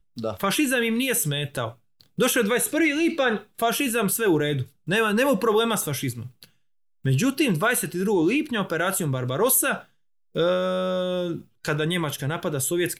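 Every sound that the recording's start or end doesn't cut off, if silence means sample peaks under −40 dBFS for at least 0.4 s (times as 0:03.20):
0:07.05–0:09.82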